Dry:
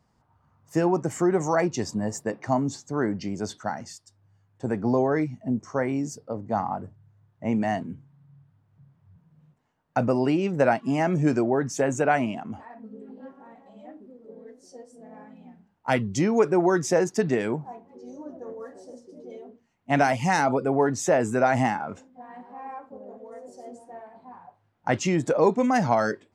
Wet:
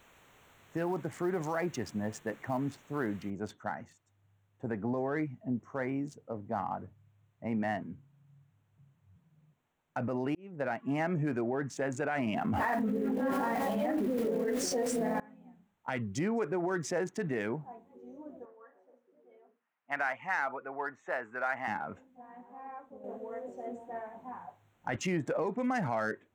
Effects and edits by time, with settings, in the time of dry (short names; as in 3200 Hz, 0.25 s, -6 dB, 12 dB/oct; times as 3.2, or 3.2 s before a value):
3.3 noise floor step -45 dB -68 dB
10.35–10.92 fade in
12.12–15.2 fast leveller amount 100%
18.45–21.68 band-pass 1400 Hz, Q 1.3
23.04–24.96 gain +8.5 dB
whole clip: Wiener smoothing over 9 samples; limiter -17 dBFS; dynamic EQ 1800 Hz, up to +6 dB, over -46 dBFS, Q 1.2; gain -7.5 dB